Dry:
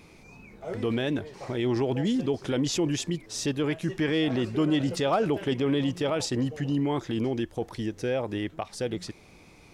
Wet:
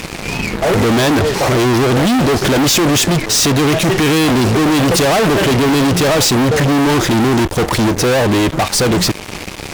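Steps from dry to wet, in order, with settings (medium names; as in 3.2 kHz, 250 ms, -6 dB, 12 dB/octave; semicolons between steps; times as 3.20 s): fuzz box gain 47 dB, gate -51 dBFS; trim +2 dB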